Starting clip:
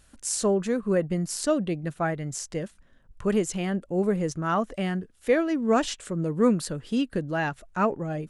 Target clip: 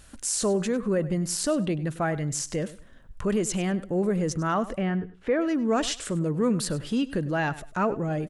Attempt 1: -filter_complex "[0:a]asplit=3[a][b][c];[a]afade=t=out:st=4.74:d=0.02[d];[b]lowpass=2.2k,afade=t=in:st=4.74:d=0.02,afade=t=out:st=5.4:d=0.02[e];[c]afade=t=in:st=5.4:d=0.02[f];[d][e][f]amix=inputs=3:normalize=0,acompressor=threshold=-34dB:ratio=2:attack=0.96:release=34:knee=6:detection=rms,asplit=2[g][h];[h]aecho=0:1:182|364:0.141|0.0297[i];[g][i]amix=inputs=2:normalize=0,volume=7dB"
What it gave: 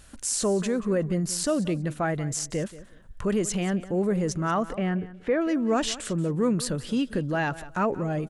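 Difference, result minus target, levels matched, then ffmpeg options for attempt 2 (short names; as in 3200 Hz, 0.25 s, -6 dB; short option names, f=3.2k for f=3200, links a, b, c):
echo 82 ms late
-filter_complex "[0:a]asplit=3[a][b][c];[a]afade=t=out:st=4.74:d=0.02[d];[b]lowpass=2.2k,afade=t=in:st=4.74:d=0.02,afade=t=out:st=5.4:d=0.02[e];[c]afade=t=in:st=5.4:d=0.02[f];[d][e][f]amix=inputs=3:normalize=0,acompressor=threshold=-34dB:ratio=2:attack=0.96:release=34:knee=6:detection=rms,asplit=2[g][h];[h]aecho=0:1:100|200:0.141|0.0297[i];[g][i]amix=inputs=2:normalize=0,volume=7dB"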